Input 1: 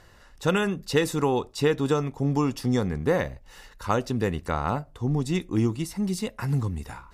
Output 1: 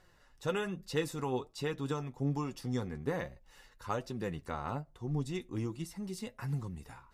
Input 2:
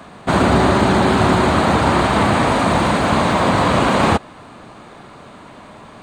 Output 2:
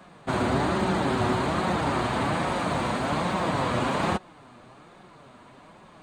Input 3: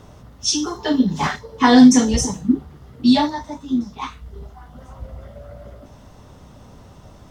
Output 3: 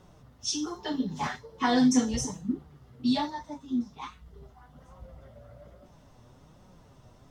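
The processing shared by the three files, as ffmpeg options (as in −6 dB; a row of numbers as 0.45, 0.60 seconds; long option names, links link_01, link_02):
-af "flanger=delay=5.4:depth=2.9:regen=42:speed=1.2:shape=sinusoidal,volume=-7dB"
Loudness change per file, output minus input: −11.0, −11.0, −12.0 LU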